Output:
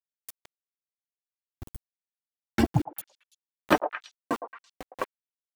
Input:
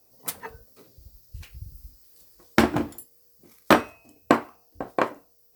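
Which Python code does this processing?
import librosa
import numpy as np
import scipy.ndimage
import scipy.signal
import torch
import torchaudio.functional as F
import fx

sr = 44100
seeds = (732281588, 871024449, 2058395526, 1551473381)

y = fx.bin_expand(x, sr, power=2.0)
y = fx.dereverb_blind(y, sr, rt60_s=0.63)
y = fx.low_shelf(y, sr, hz=110.0, db=7.5)
y = fx.auto_swell(y, sr, attack_ms=115.0)
y = np.where(np.abs(y) >= 10.0 ** (-42.5 / 20.0), y, 0.0)
y = fx.echo_stepped(y, sr, ms=111, hz=690.0, octaves=1.4, feedback_pct=70, wet_db=-5, at=(2.71, 5.09))
y = y * 10.0 ** (8.0 / 20.0)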